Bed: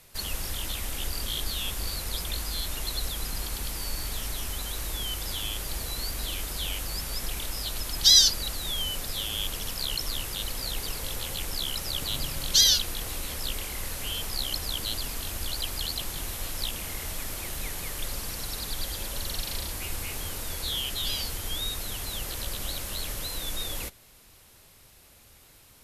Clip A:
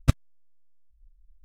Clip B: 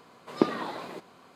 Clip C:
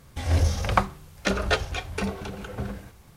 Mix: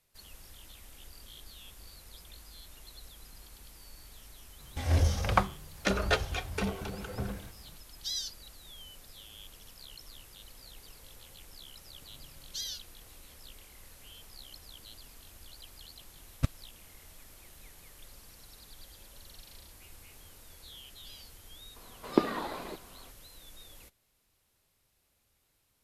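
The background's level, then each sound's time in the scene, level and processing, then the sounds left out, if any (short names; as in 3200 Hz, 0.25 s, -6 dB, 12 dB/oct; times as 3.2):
bed -19 dB
4.6 add C -4 dB
16.35 add A -9 dB
21.76 add B -1.5 dB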